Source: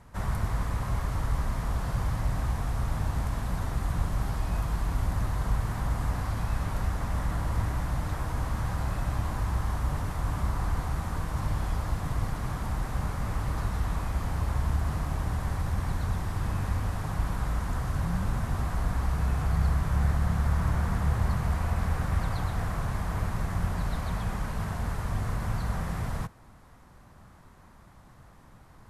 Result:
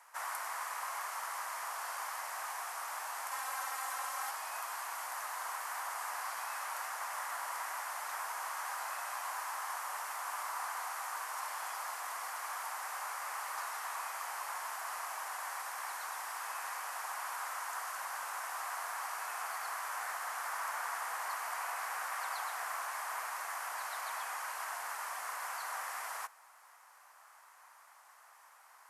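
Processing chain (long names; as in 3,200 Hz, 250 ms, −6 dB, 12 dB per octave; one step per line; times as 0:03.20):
high-pass filter 820 Hz 24 dB per octave
high-shelf EQ 6,600 Hz +6 dB
0:03.31–0:04.31: comb filter 3.8 ms, depth 82%
parametric band 3,700 Hz −7 dB 0.49 octaves
level +1 dB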